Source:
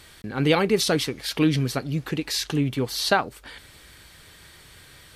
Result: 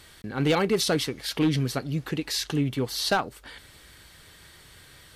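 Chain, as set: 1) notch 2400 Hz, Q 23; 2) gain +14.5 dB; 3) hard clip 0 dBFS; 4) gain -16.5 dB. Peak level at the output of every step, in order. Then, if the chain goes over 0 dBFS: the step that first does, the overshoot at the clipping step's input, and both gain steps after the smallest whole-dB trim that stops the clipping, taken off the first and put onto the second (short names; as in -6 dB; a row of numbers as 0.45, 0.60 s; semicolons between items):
-5.5, +9.0, 0.0, -16.5 dBFS; step 2, 9.0 dB; step 2 +5.5 dB, step 4 -7.5 dB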